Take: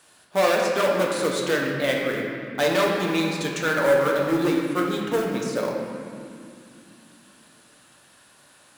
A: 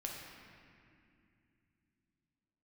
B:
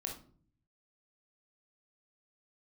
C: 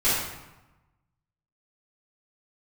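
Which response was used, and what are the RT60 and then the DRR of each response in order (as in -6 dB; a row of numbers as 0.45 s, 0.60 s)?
A; 2.4 s, no single decay rate, 1.0 s; -1.5 dB, 0.0 dB, -15.0 dB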